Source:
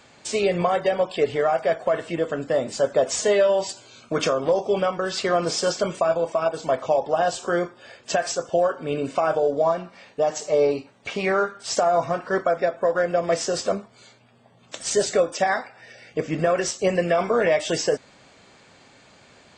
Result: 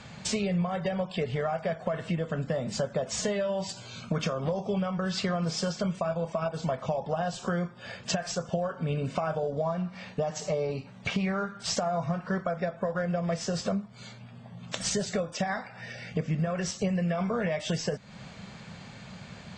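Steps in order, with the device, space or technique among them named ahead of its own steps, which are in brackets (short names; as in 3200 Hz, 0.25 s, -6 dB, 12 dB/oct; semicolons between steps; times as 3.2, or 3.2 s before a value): jukebox (LPF 6700 Hz 12 dB/oct; resonant low shelf 240 Hz +7.5 dB, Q 3; compressor 5:1, threshold -32 dBFS, peak gain reduction 17.5 dB); gain +4 dB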